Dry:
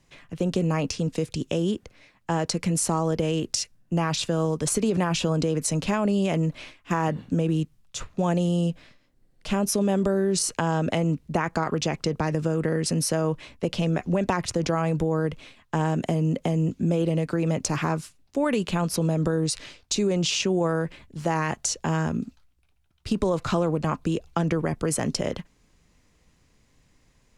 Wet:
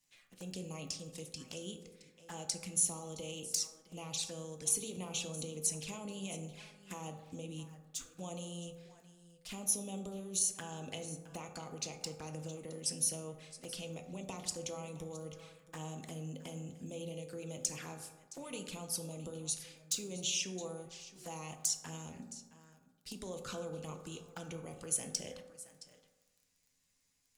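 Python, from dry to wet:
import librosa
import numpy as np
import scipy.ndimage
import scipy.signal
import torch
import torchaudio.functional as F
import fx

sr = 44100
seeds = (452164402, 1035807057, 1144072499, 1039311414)

y = x + 10.0 ** (-16.0 / 20.0) * np.pad(x, (int(667 * sr / 1000.0), 0))[:len(x)]
y = fx.env_flanger(y, sr, rest_ms=11.6, full_db=-21.5)
y = fx.dmg_crackle(y, sr, seeds[0], per_s=12.0, level_db=-50.0)
y = F.preemphasis(torch.from_numpy(y), 0.9).numpy()
y = fx.rev_fdn(y, sr, rt60_s=1.2, lf_ratio=1.0, hf_ratio=0.35, size_ms=12.0, drr_db=4.0)
y = y * librosa.db_to_amplitude(-2.5)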